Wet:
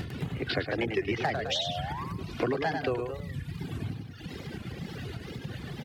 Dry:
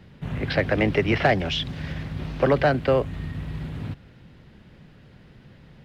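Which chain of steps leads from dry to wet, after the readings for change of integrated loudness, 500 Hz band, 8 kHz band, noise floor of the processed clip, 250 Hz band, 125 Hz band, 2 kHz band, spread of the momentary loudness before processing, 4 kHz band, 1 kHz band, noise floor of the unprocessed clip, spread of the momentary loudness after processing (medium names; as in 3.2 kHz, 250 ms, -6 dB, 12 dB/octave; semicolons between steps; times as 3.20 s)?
-8.5 dB, -8.5 dB, no reading, -44 dBFS, -7.0 dB, -7.0 dB, -7.5 dB, 13 LU, -2.5 dB, -6.0 dB, -51 dBFS, 10 LU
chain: comb 2.6 ms, depth 39%; reverb removal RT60 1.1 s; upward compressor, threshold -23 dBFS; treble shelf 4.1 kHz +11 dB; painted sound rise, 1.37–2.04 s, 440–1100 Hz -31 dBFS; reverb removal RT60 1.3 s; bass shelf 230 Hz +10.5 dB; feedback delay 101 ms, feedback 41%, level -7 dB; compression 3:1, threshold -29 dBFS, peak gain reduction 12.5 dB; high-pass 130 Hz 12 dB/octave; wow and flutter 150 cents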